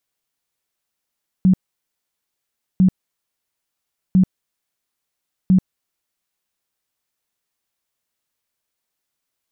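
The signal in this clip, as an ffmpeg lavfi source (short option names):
-f lavfi -i "aevalsrc='0.355*sin(2*PI*186*mod(t,1.35))*lt(mod(t,1.35),16/186)':d=5.4:s=44100"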